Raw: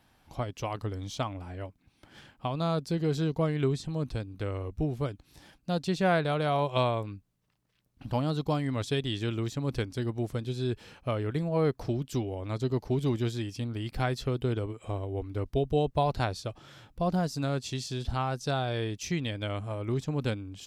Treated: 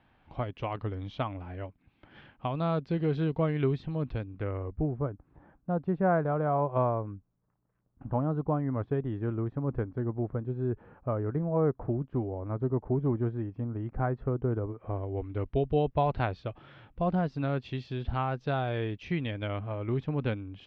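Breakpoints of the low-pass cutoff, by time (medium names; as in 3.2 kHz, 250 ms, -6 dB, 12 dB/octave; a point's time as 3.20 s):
low-pass 24 dB/octave
4.15 s 3 kHz
5.01 s 1.4 kHz
14.68 s 1.4 kHz
15.32 s 2.9 kHz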